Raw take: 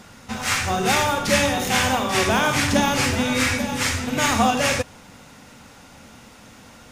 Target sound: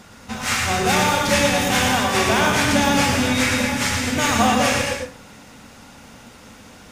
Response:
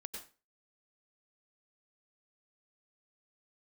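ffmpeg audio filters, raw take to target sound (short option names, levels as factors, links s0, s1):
-filter_complex "[0:a]asplit=2[s0][s1];[1:a]atrim=start_sample=2205,adelay=115[s2];[s1][s2]afir=irnorm=-1:irlink=0,volume=1.12[s3];[s0][s3]amix=inputs=2:normalize=0"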